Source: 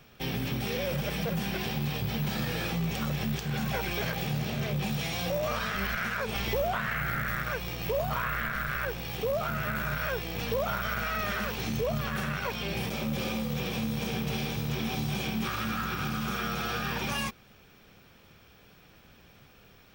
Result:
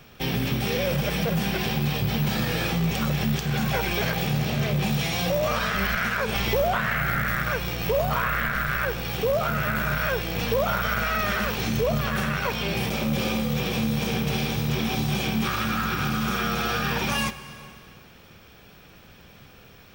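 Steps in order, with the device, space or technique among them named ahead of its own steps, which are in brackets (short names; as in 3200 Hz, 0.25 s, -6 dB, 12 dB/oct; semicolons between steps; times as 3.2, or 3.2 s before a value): compressed reverb return (on a send at -9 dB: reverb RT60 1.8 s, pre-delay 45 ms + compressor, threshold -33 dBFS, peak gain reduction 9.5 dB); on the sum: gain +6 dB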